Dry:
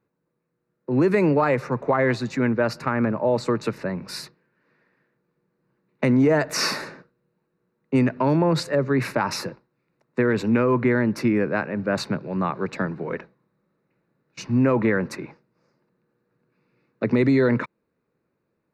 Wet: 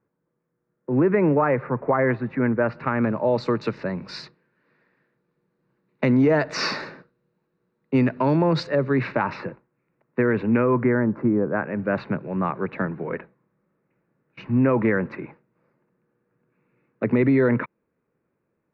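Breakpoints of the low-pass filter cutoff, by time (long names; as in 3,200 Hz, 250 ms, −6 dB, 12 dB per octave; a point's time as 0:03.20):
low-pass filter 24 dB per octave
0:02.59 2,100 Hz
0:03.15 4,900 Hz
0:08.62 4,900 Hz
0:09.49 2,600 Hz
0:10.60 2,600 Hz
0:11.42 1,100 Hz
0:11.72 2,700 Hz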